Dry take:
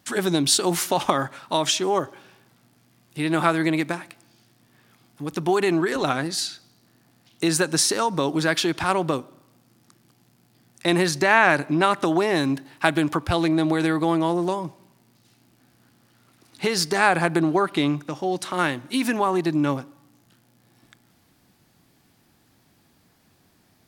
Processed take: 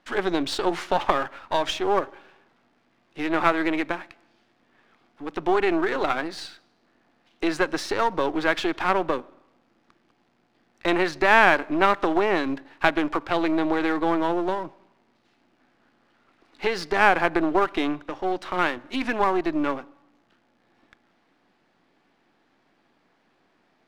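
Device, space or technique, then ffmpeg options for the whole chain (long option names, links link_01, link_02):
crystal radio: -af "highpass=310,lowpass=2600,aeval=exprs='if(lt(val(0),0),0.447*val(0),val(0))':channel_layout=same,volume=3dB"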